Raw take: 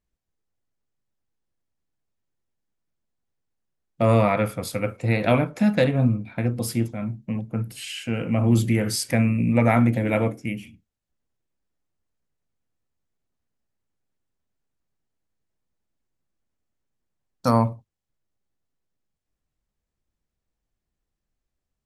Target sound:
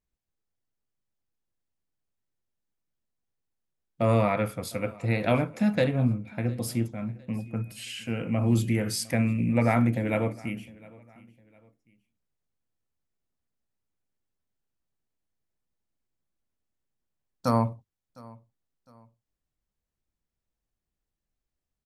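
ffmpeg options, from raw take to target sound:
-filter_complex "[0:a]asettb=1/sr,asplit=3[s0][s1][s2];[s0]atrim=end=7.364[s3];[s1]atrim=start=7.36:end=8.98,asetpts=PTS-STARTPTS,afade=t=in:d=0.004:c=qsin,afade=t=out:st=1.616:d=0.004:c=qsin,aeval=exprs='val(0)+0.00251*sin(2*PI*2500*n/s)':c=same[s4];[s2]atrim=start=8.976[s5];[s3][s4]acrossfade=d=0.004:c1=hsin:c2=qsin[s6];[s6][s5]acrossfade=d=0.004:c1=qsin:c2=hsin,aecho=1:1:707|1414:0.0708|0.0255,volume=0.596"

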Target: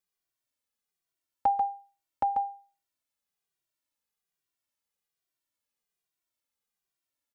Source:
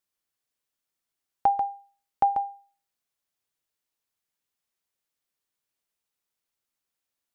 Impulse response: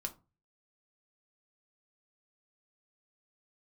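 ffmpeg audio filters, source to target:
-filter_complex "[0:a]asplit=2[s0][s1];[s1]adelay=2,afreqshift=-1.2[s2];[s0][s2]amix=inputs=2:normalize=1"

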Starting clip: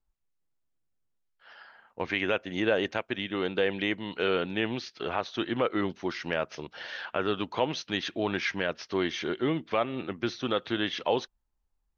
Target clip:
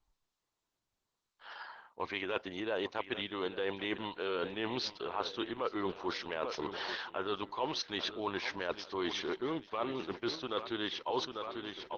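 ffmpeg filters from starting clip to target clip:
-af "equalizer=f=160:t=o:w=0.67:g=-4,equalizer=f=400:t=o:w=0.67:g=5,equalizer=f=1000:t=o:w=0.67:g=12,equalizer=f=4000:t=o:w=0.67:g=9,aecho=1:1:845|1690|2535|3380|4225:0.158|0.084|0.0445|0.0236|0.0125,areverse,acompressor=threshold=0.0224:ratio=5,areverse,adynamicequalizer=threshold=0.00126:dfrequency=5400:dqfactor=4.7:tfrequency=5400:tqfactor=4.7:attack=5:release=100:ratio=0.375:range=1.5:mode=boostabove:tftype=bell" -ar 48000 -c:a libopus -b:a 12k

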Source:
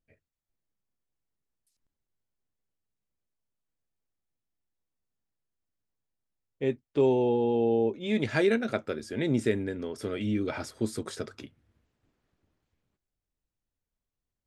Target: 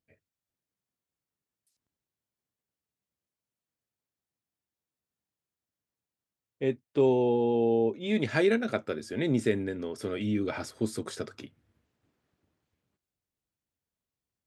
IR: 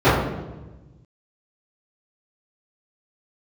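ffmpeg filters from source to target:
-af "highpass=80"

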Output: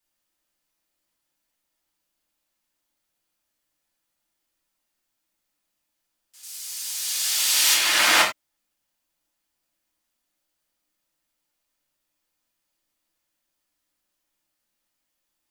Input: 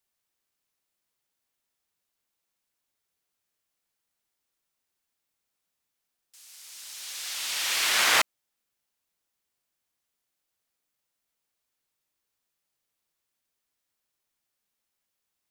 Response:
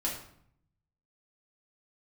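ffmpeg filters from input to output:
-filter_complex "[0:a]asettb=1/sr,asplit=3[s0][s1][s2];[s0]atrim=end=6.434[s3];[s1]atrim=start=6.43:end=7.74,asetpts=PTS-STARTPTS,afade=t=in:d=0.004:c=qsin,afade=t=out:st=1.306:d=0.004:c=qsin,highshelf=f=4000:g=11[s4];[s2]atrim=start=7.736[s5];[s3][s4]acrossfade=d=0.004:c1=hsin:c2=qsin[s6];[s6][s5]acrossfade=d=0.004:c1=qsin:c2=hsin[s7];[1:a]atrim=start_sample=2205,afade=t=out:st=0.15:d=0.01,atrim=end_sample=7056[s8];[s7][s8]afir=irnorm=-1:irlink=0"

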